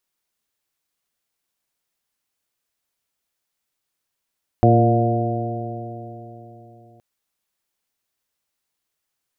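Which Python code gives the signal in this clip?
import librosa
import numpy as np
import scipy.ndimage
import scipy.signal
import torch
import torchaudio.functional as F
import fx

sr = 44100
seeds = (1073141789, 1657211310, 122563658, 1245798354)

y = fx.additive_stiff(sr, length_s=2.37, hz=115.0, level_db=-13.0, upper_db=(-5, -4.0, -8.0, -7.0, -2.5), decay_s=3.69, stiffness=0.0017)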